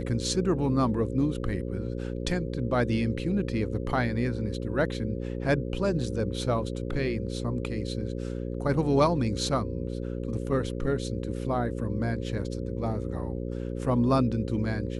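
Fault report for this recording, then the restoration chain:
buzz 60 Hz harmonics 9 -33 dBFS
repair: de-hum 60 Hz, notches 9

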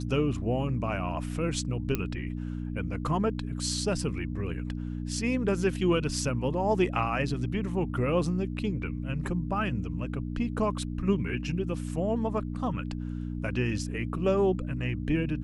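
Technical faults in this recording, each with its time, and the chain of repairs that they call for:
hum 60 Hz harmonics 5 -34 dBFS
1.95 s: pop -14 dBFS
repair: de-click; de-hum 60 Hz, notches 5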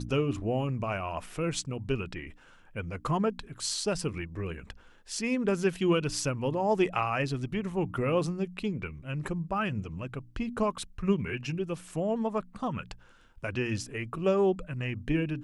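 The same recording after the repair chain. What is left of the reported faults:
nothing left

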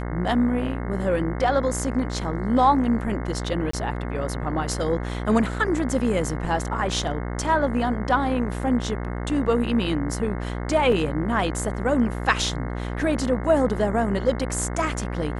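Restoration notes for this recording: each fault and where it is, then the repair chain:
buzz 60 Hz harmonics 36 -29 dBFS
3.71–3.73 s: dropout 24 ms
10.92 s: dropout 3.1 ms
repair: de-hum 60 Hz, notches 36; interpolate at 3.71 s, 24 ms; interpolate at 10.92 s, 3.1 ms

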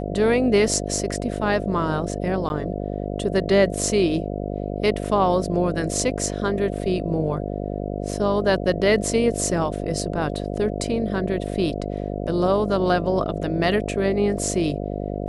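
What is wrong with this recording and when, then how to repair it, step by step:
buzz 50 Hz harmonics 14 -28 dBFS
2.49–2.50 s: dropout 11 ms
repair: de-hum 50 Hz, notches 14; interpolate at 2.49 s, 11 ms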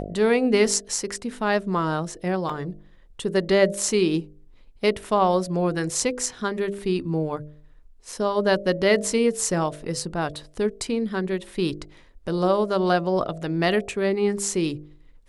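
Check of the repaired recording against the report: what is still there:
nothing left

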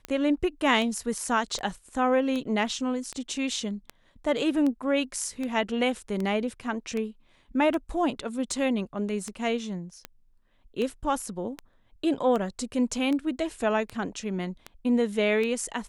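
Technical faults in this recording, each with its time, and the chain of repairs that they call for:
tick 78 rpm -19 dBFS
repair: de-click

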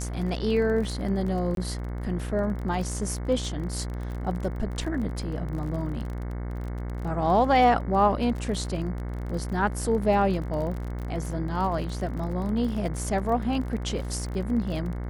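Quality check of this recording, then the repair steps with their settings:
buzz 60 Hz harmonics 37 -32 dBFS
crackle 31 per s -33 dBFS
1.55–1.57 s: dropout 22 ms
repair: de-click; de-hum 60 Hz, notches 37; interpolate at 1.55 s, 22 ms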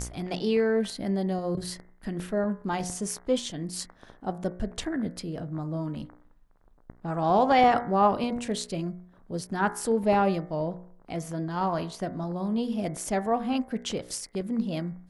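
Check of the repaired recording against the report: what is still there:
nothing left

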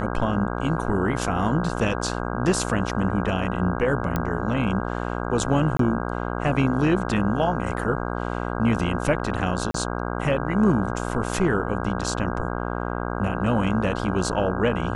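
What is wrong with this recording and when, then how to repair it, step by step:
buzz 60 Hz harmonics 27 -28 dBFS
4.16 s: pop -11 dBFS
5.77–5.79 s: dropout 23 ms
9.71–9.74 s: dropout 33 ms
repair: de-click; de-hum 60 Hz, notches 27; interpolate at 5.77 s, 23 ms; interpolate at 9.71 s, 33 ms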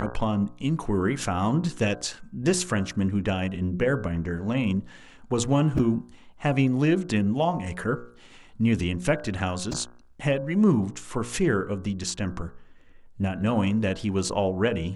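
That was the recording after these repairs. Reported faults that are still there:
nothing left

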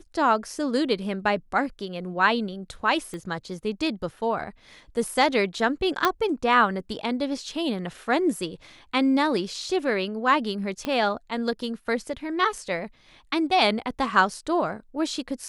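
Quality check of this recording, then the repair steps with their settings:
3.14 s: pop -23 dBFS
6.05 s: pop -6 dBFS
10.85 s: pop -15 dBFS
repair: de-click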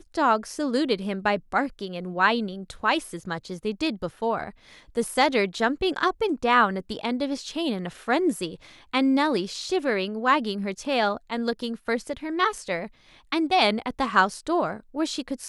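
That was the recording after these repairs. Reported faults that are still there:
3.14 s: pop
10.85 s: pop

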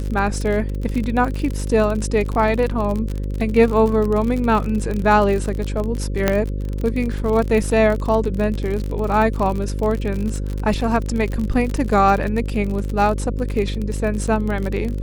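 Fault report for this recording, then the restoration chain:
buzz 50 Hz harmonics 11 -24 dBFS
crackle 45 per s -23 dBFS
6.28 s: pop -2 dBFS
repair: de-click; de-hum 50 Hz, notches 11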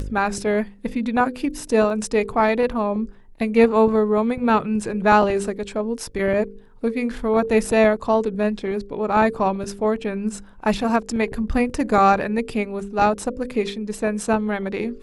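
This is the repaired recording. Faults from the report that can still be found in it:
nothing left

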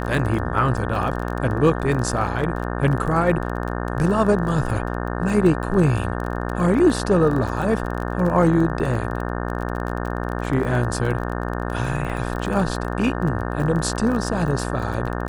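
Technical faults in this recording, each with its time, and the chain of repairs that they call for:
buzz 60 Hz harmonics 30 -26 dBFS
crackle 27 per s -27 dBFS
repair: de-click; de-hum 60 Hz, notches 30

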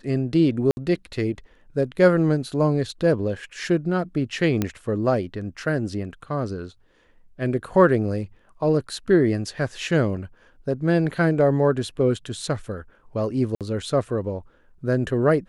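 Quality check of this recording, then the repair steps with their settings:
0.71–0.77 s: dropout 60 ms
4.62 s: pop -9 dBFS
13.55–13.61 s: dropout 57 ms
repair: de-click; interpolate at 0.71 s, 60 ms; interpolate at 13.55 s, 57 ms

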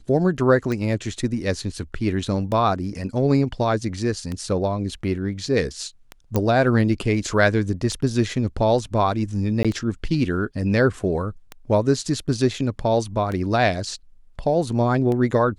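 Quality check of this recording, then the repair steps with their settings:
tick 33 1/3 rpm
6.36 s: pop -8 dBFS
9.63–9.65 s: dropout 16 ms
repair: de-click; interpolate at 9.63 s, 16 ms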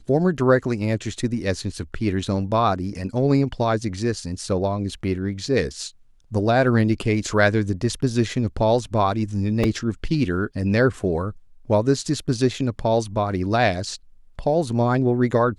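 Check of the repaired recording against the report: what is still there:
nothing left

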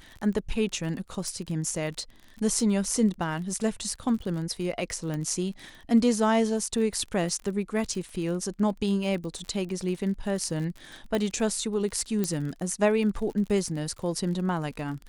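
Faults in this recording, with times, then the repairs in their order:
crackle 42 per s -35 dBFS
1.28 s: pop -22 dBFS
5.14 s: pop
11.15 s: pop -15 dBFS
12.24 s: pop -14 dBFS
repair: de-click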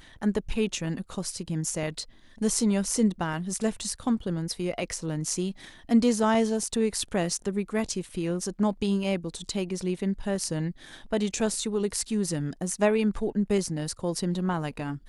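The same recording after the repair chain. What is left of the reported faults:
nothing left

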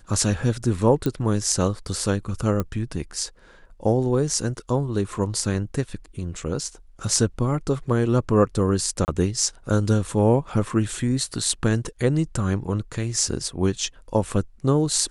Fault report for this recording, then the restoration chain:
1.06 s: pop -12 dBFS
2.60 s: pop -12 dBFS
9.05–9.08 s: dropout 29 ms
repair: de-click; interpolate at 9.05 s, 29 ms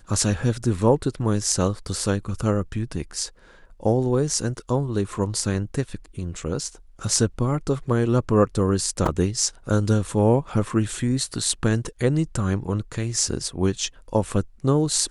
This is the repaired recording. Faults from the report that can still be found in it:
2.60 s: pop

